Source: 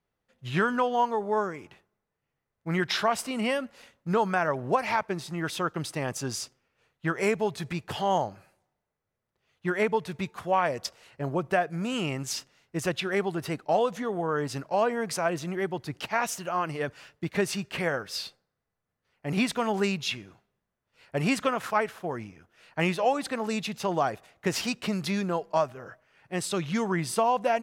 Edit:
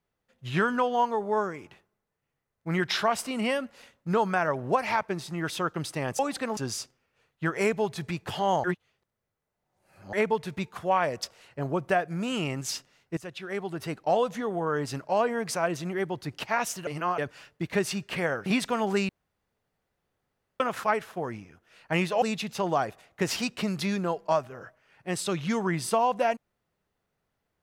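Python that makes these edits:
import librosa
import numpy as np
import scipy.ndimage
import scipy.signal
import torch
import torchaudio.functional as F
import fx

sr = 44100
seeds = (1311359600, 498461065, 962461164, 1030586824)

y = fx.edit(x, sr, fx.reverse_span(start_s=8.26, length_s=1.49),
    fx.fade_in_from(start_s=12.79, length_s=0.93, floor_db=-16.0),
    fx.reverse_span(start_s=16.49, length_s=0.31),
    fx.cut(start_s=18.08, length_s=1.25),
    fx.room_tone_fill(start_s=19.96, length_s=1.51),
    fx.move(start_s=23.09, length_s=0.38, to_s=6.19), tone=tone)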